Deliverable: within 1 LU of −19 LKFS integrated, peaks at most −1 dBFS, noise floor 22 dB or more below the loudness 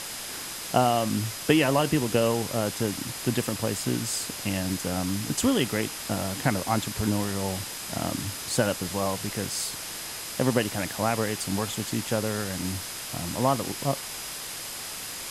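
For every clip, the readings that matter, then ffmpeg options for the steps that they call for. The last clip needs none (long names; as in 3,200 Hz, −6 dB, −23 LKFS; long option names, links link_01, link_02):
interfering tone 5,000 Hz; level of the tone −45 dBFS; background noise floor −37 dBFS; target noise floor −50 dBFS; integrated loudness −27.5 LKFS; sample peak −6.5 dBFS; target loudness −19.0 LKFS
→ -af "bandreject=frequency=5000:width=30"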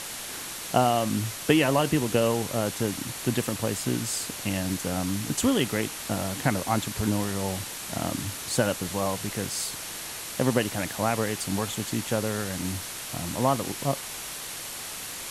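interfering tone none found; background noise floor −37 dBFS; target noise floor −50 dBFS
→ -af "afftdn=noise_reduction=13:noise_floor=-37"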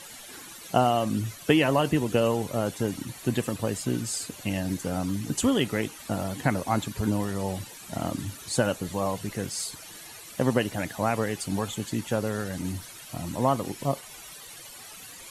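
background noise floor −45 dBFS; target noise floor −50 dBFS
→ -af "afftdn=noise_reduction=6:noise_floor=-45"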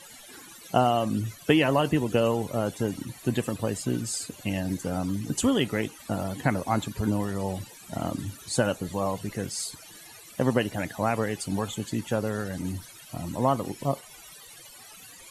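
background noise floor −48 dBFS; target noise floor −51 dBFS
→ -af "afftdn=noise_reduction=6:noise_floor=-48"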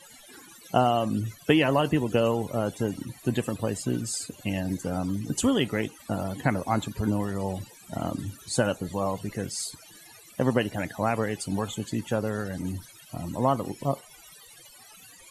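background noise floor −51 dBFS; integrated loudness −28.5 LKFS; sample peak −7.0 dBFS; target loudness −19.0 LKFS
→ -af "volume=9.5dB,alimiter=limit=-1dB:level=0:latency=1"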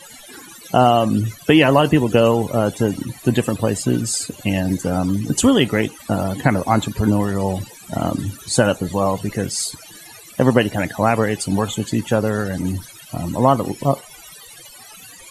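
integrated loudness −19.0 LKFS; sample peak −1.0 dBFS; background noise floor −42 dBFS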